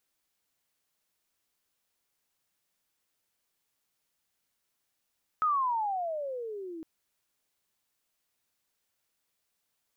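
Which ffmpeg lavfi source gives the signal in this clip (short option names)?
-f lavfi -i "aevalsrc='pow(10,(-23-15.5*t/1.41)/20)*sin(2*PI*1290*1.41/(-24.5*log(2)/12)*(exp(-24.5*log(2)/12*t/1.41)-1))':d=1.41:s=44100"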